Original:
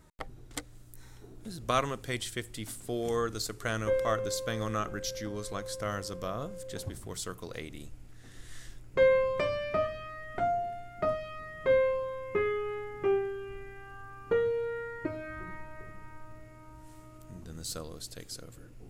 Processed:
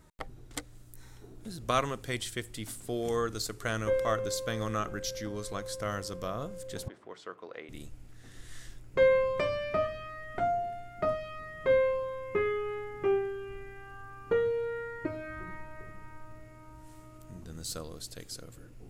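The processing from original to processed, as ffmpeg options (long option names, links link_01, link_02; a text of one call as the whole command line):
ffmpeg -i in.wav -filter_complex "[0:a]asettb=1/sr,asplit=3[link_01][link_02][link_03];[link_01]atrim=end=6.884[link_04];[link_02]atrim=start=6.88:end=7.69,asetpts=PTS-STARTPTS,afade=type=in:duration=0.004:curve=qsin,afade=type=out:start_time=0.806:duration=0.004:curve=qsin,highpass=400,lowpass=2100[link_05];[link_03]atrim=start=7.686[link_06];[link_04][link_05]acrossfade=duration=0.004:curve1=hsin:curve2=qsin[link_07];[link_07][link_06]acrossfade=duration=0.004:curve1=qsin:curve2=hsin" out.wav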